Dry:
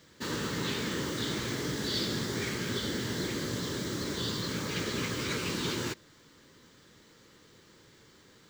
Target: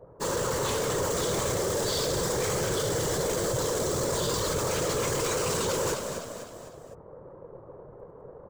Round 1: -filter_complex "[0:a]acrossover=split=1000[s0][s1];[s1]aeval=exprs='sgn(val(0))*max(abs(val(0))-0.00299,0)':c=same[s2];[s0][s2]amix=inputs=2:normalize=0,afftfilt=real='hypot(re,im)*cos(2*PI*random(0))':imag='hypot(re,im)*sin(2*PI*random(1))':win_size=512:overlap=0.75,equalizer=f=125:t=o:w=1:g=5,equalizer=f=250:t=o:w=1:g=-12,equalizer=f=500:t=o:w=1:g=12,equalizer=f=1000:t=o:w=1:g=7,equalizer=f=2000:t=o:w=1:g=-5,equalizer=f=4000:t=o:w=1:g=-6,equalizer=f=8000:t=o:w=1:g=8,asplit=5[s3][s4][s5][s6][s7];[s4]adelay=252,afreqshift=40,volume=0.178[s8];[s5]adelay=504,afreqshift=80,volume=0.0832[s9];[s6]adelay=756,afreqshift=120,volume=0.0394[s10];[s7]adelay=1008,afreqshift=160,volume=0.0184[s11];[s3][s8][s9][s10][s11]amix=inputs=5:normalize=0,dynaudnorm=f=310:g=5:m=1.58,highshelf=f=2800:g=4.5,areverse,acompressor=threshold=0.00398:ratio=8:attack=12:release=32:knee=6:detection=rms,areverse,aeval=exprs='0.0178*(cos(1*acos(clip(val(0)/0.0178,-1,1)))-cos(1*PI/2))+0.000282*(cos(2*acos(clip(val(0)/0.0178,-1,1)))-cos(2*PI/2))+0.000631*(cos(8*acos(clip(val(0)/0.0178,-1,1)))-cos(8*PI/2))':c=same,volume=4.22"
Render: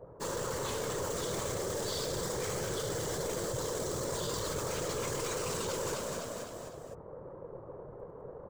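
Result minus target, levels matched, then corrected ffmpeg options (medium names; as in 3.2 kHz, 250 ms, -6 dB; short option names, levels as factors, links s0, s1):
compression: peak gain reduction +8 dB
-filter_complex "[0:a]acrossover=split=1000[s0][s1];[s1]aeval=exprs='sgn(val(0))*max(abs(val(0))-0.00299,0)':c=same[s2];[s0][s2]amix=inputs=2:normalize=0,afftfilt=real='hypot(re,im)*cos(2*PI*random(0))':imag='hypot(re,im)*sin(2*PI*random(1))':win_size=512:overlap=0.75,equalizer=f=125:t=o:w=1:g=5,equalizer=f=250:t=o:w=1:g=-12,equalizer=f=500:t=o:w=1:g=12,equalizer=f=1000:t=o:w=1:g=7,equalizer=f=2000:t=o:w=1:g=-5,equalizer=f=4000:t=o:w=1:g=-6,equalizer=f=8000:t=o:w=1:g=8,asplit=5[s3][s4][s5][s6][s7];[s4]adelay=252,afreqshift=40,volume=0.178[s8];[s5]adelay=504,afreqshift=80,volume=0.0832[s9];[s6]adelay=756,afreqshift=120,volume=0.0394[s10];[s7]adelay=1008,afreqshift=160,volume=0.0184[s11];[s3][s8][s9][s10][s11]amix=inputs=5:normalize=0,dynaudnorm=f=310:g=5:m=1.58,highshelf=f=2800:g=4.5,areverse,acompressor=threshold=0.0112:ratio=8:attack=12:release=32:knee=6:detection=rms,areverse,aeval=exprs='0.0178*(cos(1*acos(clip(val(0)/0.0178,-1,1)))-cos(1*PI/2))+0.000282*(cos(2*acos(clip(val(0)/0.0178,-1,1)))-cos(2*PI/2))+0.000631*(cos(8*acos(clip(val(0)/0.0178,-1,1)))-cos(8*PI/2))':c=same,volume=4.22"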